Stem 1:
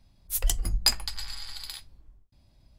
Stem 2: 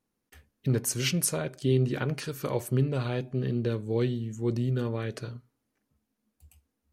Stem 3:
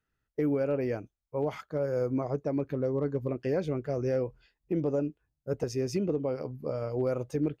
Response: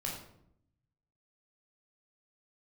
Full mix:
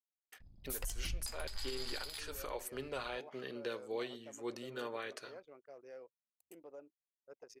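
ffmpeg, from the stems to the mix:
-filter_complex "[0:a]acompressor=threshold=0.0282:ratio=5,adelay=400,volume=1.19[s0];[1:a]volume=0.891[s1];[2:a]adelay=1800,volume=0.158[s2];[s1][s2]amix=inputs=2:normalize=0,highpass=660,alimiter=level_in=1.19:limit=0.0631:level=0:latency=1:release=345,volume=0.841,volume=1[s3];[s0][s3]amix=inputs=2:normalize=0,anlmdn=0.0000251,alimiter=level_in=1.88:limit=0.0631:level=0:latency=1:release=151,volume=0.531"

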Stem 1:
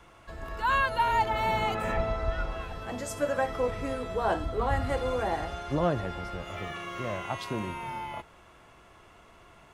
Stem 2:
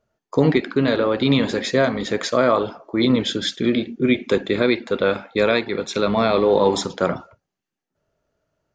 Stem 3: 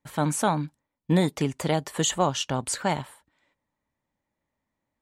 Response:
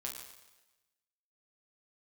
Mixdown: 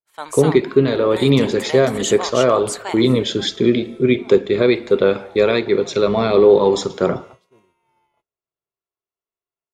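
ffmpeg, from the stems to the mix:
-filter_complex "[0:a]bass=f=250:g=-7,treble=f=4000:g=5,volume=0.168[s0];[1:a]aphaser=in_gain=1:out_gain=1:delay=1.8:decay=0.22:speed=1.4:type=sinusoidal,volume=0.562,asplit=3[s1][s2][s3];[s2]volume=0.224[s4];[2:a]highpass=970,volume=0.75[s5];[s3]apad=whole_len=429403[s6];[s0][s6]sidechaincompress=threshold=0.0631:ratio=8:attack=5.9:release=580[s7];[3:a]atrim=start_sample=2205[s8];[s4][s8]afir=irnorm=-1:irlink=0[s9];[s7][s1][s5][s9]amix=inputs=4:normalize=0,agate=range=0.0224:threshold=0.0112:ratio=3:detection=peak,equalizer=f=125:t=o:w=0.33:g=6,equalizer=f=400:t=o:w=0.33:g=10,equalizer=f=1600:t=o:w=0.33:g=-3,dynaudnorm=f=110:g=3:m=1.88"

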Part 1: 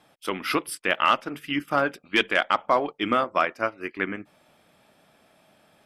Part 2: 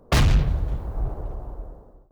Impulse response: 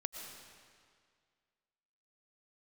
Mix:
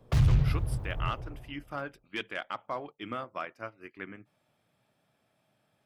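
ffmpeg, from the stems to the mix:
-filter_complex "[0:a]volume=0.188[s0];[1:a]acrossover=split=150[s1][s2];[s2]acompressor=threshold=0.0447:ratio=6[s3];[s1][s3]amix=inputs=2:normalize=0,volume=0.398,afade=t=out:st=0.9:d=0.7:silence=0.237137[s4];[s0][s4]amix=inputs=2:normalize=0,equalizer=f=120:w=2.5:g=12.5"

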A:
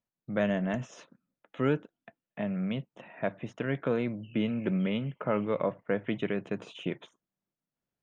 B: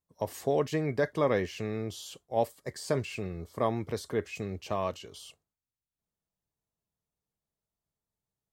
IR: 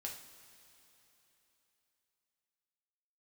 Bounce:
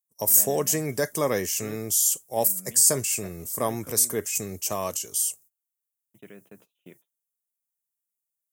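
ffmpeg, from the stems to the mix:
-filter_complex "[0:a]volume=0.168,asplit=3[s0][s1][s2];[s0]atrim=end=4.26,asetpts=PTS-STARTPTS,afade=t=out:st=4.256:d=0.004:c=hsin[s3];[s1]atrim=start=4.26:end=6.14,asetpts=PTS-STARTPTS,volume=0[s4];[s2]atrim=start=6.14,asetpts=PTS-STARTPTS,afade=t=in:d=0.004:c=hsin[s5];[s3][s4][s5]concat=n=3:v=0:a=1[s6];[1:a]aexciter=amount=11.4:drive=3.7:freq=5800,volume=1.19[s7];[s6][s7]amix=inputs=2:normalize=0,agate=range=0.0794:threshold=0.00178:ratio=16:detection=peak,highpass=94,highshelf=f=4600:g=8.5"

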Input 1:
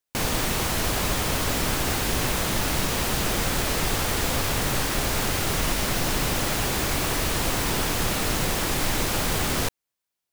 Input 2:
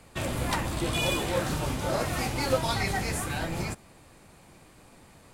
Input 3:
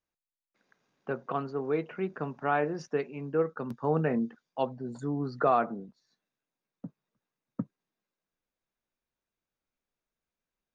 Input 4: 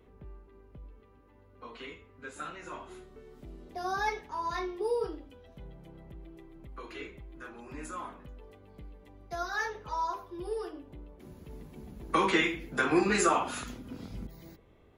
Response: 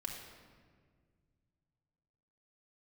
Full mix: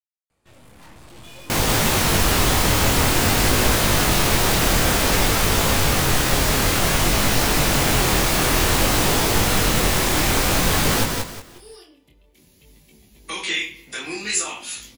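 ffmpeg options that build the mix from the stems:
-filter_complex "[0:a]adelay=1350,volume=0.841,asplit=2[s0][s1];[s1]volume=0.596[s2];[1:a]aeval=exprs='(tanh(70.8*val(0)+0.75)-tanh(0.75))/70.8':c=same,adelay=300,volume=0.299[s3];[3:a]aexciter=amount=8.9:drive=1.2:freq=2000,adelay=1150,volume=0.126,asplit=2[s4][s5];[s5]volume=0.158[s6];[4:a]atrim=start_sample=2205[s7];[s6][s7]afir=irnorm=-1:irlink=0[s8];[s2]aecho=0:1:181|362|543|724:1|0.29|0.0841|0.0244[s9];[s0][s3][s4][s8][s9]amix=inputs=5:normalize=0,dynaudnorm=f=200:g=9:m=4.22,flanger=delay=18.5:depth=7.8:speed=0.54"

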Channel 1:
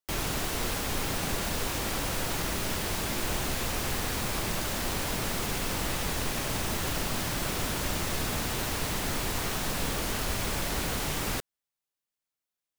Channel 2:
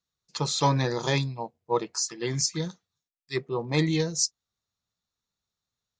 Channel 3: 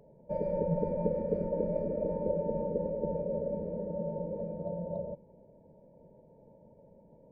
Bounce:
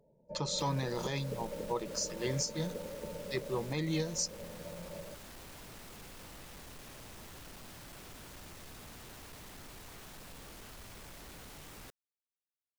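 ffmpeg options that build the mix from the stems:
-filter_complex "[0:a]asoftclip=type=tanh:threshold=0.0335,adelay=500,volume=0.158[s0];[1:a]agate=range=0.0891:threshold=0.002:ratio=16:detection=peak,volume=0.531[s1];[2:a]volume=0.316[s2];[s0][s1][s2]amix=inputs=3:normalize=0,alimiter=limit=0.0708:level=0:latency=1:release=184"

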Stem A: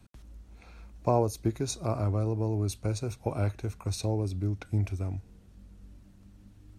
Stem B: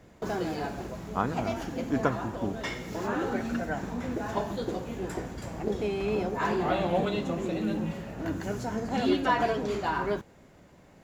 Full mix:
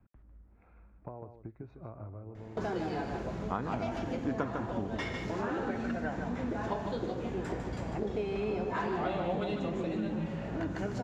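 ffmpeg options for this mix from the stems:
-filter_complex "[0:a]lowpass=f=1900:w=0.5412,lowpass=f=1900:w=1.3066,acompressor=threshold=0.0224:ratio=8,volume=0.398,asplit=2[s0][s1];[s1]volume=0.355[s2];[1:a]adynamicsmooth=sensitivity=2:basefreq=5300,adelay=2350,volume=1.19,asplit=2[s3][s4];[s4]volume=0.422[s5];[s2][s5]amix=inputs=2:normalize=0,aecho=0:1:151:1[s6];[s0][s3][s6]amix=inputs=3:normalize=0,acompressor=threshold=0.0224:ratio=2.5"

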